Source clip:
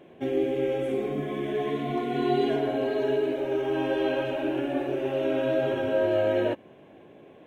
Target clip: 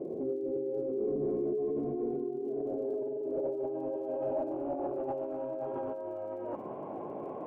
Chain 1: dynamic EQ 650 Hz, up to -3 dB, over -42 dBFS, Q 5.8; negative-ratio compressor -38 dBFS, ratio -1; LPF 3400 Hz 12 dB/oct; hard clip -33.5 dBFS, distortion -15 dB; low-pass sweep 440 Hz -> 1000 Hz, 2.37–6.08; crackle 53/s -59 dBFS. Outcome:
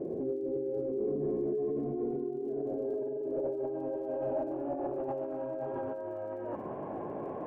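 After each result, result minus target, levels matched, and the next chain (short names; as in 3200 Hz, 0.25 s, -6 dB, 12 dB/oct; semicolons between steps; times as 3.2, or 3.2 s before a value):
2000 Hz band +5.0 dB; 125 Hz band +3.0 dB
dynamic EQ 650 Hz, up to -3 dB, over -42 dBFS, Q 5.8; negative-ratio compressor -38 dBFS, ratio -1; LPF 3400 Hz 12 dB/oct; bell 1700 Hz -11 dB 0.28 oct; hard clip -33.5 dBFS, distortion -15 dB; low-pass sweep 440 Hz -> 1000 Hz, 2.37–6.08; crackle 53/s -59 dBFS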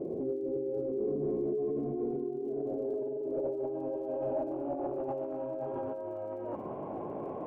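125 Hz band +3.0 dB
dynamic EQ 650 Hz, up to -3 dB, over -42 dBFS, Q 5.8; HPF 170 Hz 6 dB/oct; negative-ratio compressor -38 dBFS, ratio -1; LPF 3400 Hz 12 dB/oct; bell 1700 Hz -11 dB 0.28 oct; hard clip -33.5 dBFS, distortion -15 dB; low-pass sweep 440 Hz -> 1000 Hz, 2.37–6.08; crackle 53/s -59 dBFS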